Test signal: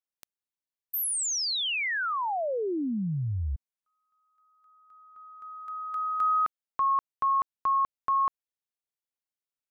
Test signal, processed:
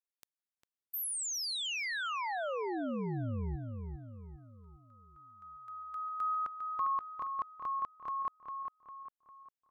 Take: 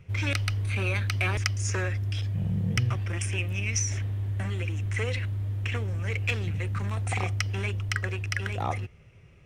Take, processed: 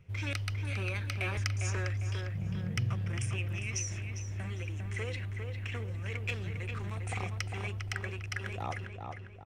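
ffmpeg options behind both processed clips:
-filter_complex "[0:a]asplit=2[a][b];[b]adelay=402,lowpass=f=2.9k:p=1,volume=-5dB,asplit=2[c][d];[d]adelay=402,lowpass=f=2.9k:p=1,volume=0.46,asplit=2[e][f];[f]adelay=402,lowpass=f=2.9k:p=1,volume=0.46,asplit=2[g][h];[h]adelay=402,lowpass=f=2.9k:p=1,volume=0.46,asplit=2[i][j];[j]adelay=402,lowpass=f=2.9k:p=1,volume=0.46,asplit=2[k][l];[l]adelay=402,lowpass=f=2.9k:p=1,volume=0.46[m];[a][c][e][g][i][k][m]amix=inputs=7:normalize=0,volume=-7.5dB"

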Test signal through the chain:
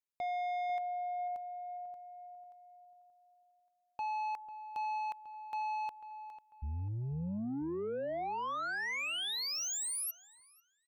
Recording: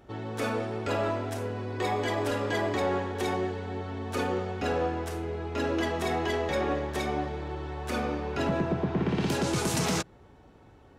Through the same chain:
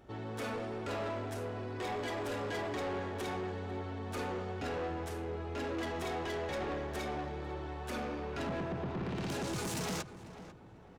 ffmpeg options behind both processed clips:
-filter_complex "[0:a]asoftclip=type=tanh:threshold=-30.5dB,asplit=2[a][b];[b]adelay=495,lowpass=f=1.9k:p=1,volume=-12.5dB,asplit=2[c][d];[d]adelay=495,lowpass=f=1.9k:p=1,volume=0.39,asplit=2[e][f];[f]adelay=495,lowpass=f=1.9k:p=1,volume=0.39,asplit=2[g][h];[h]adelay=495,lowpass=f=1.9k:p=1,volume=0.39[i];[c][e][g][i]amix=inputs=4:normalize=0[j];[a][j]amix=inputs=2:normalize=0,volume=-3.5dB"

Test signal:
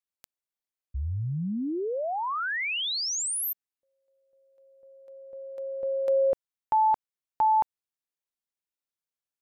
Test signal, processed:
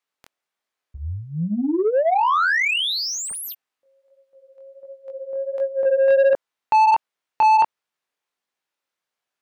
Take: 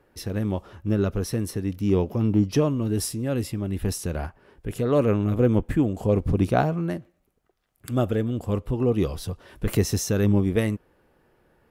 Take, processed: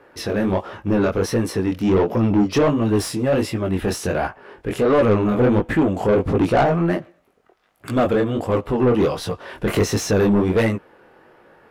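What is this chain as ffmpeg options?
-filter_complex "[0:a]flanger=delay=17.5:depth=6.8:speed=1.4,asplit=2[a][b];[b]highpass=f=720:p=1,volume=23dB,asoftclip=type=tanh:threshold=-11dB[c];[a][c]amix=inputs=2:normalize=0,lowpass=f=1.7k:p=1,volume=-6dB,volume=3.5dB"

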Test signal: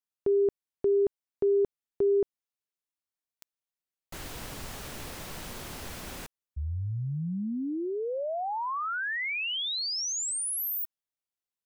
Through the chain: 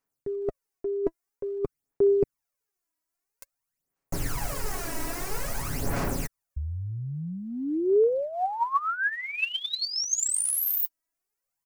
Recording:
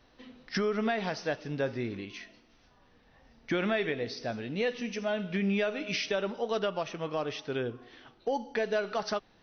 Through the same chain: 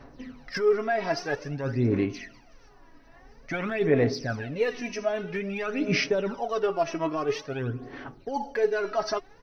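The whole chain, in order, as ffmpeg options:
-af "equalizer=f=3.4k:t=o:w=0.73:g=-11.5,aecho=1:1:7.2:0.42,areverse,acompressor=threshold=-34dB:ratio=10:attack=55:release=161:knee=6:detection=peak,areverse,aphaser=in_gain=1:out_gain=1:delay=3.1:decay=0.67:speed=0.5:type=sinusoidal,volume=5.5dB"

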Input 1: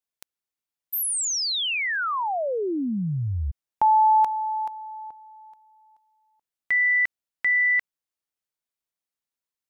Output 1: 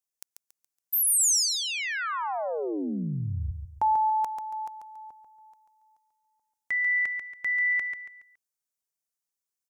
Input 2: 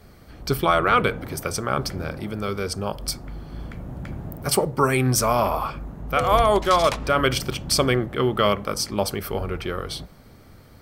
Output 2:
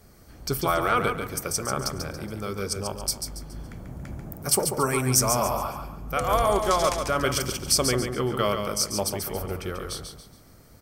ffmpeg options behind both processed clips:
-filter_complex "[0:a]highshelf=f=4.8k:t=q:w=1.5:g=6.5,asplit=2[a][b];[b]aecho=0:1:140|280|420|560:0.473|0.166|0.058|0.0203[c];[a][c]amix=inputs=2:normalize=0,volume=-5dB"

